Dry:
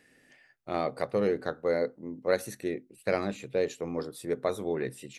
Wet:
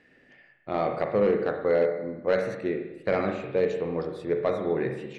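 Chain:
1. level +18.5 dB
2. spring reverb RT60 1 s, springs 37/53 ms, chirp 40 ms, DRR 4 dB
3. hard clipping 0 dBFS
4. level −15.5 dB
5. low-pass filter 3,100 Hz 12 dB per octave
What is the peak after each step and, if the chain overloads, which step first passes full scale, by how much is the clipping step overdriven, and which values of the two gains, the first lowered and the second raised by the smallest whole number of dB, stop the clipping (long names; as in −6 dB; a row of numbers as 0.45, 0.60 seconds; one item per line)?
+5.5, +7.0, 0.0, −15.5, −15.0 dBFS
step 1, 7.0 dB
step 1 +11.5 dB, step 4 −8.5 dB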